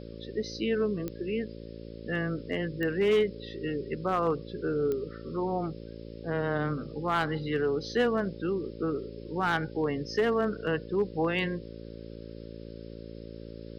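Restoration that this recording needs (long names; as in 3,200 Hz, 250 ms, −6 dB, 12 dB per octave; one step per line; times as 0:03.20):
clipped peaks rebuilt −19 dBFS
click removal
hum removal 56.2 Hz, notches 10
broadband denoise 30 dB, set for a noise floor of −43 dBFS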